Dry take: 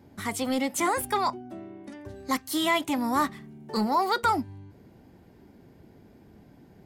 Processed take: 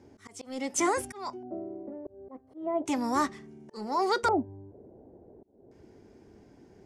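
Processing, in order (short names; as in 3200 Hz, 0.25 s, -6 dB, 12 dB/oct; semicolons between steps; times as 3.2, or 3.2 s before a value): fifteen-band EQ 160 Hz -5 dB, 400 Hz +7 dB, 4000 Hz -6 dB, 10000 Hz +7 dB; LFO low-pass square 0.35 Hz 620–5900 Hz; auto swell 0.355 s; gain -3 dB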